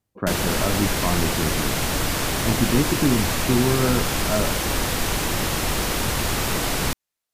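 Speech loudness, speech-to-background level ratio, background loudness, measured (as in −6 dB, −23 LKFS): −25.0 LKFS, −2.0 dB, −23.0 LKFS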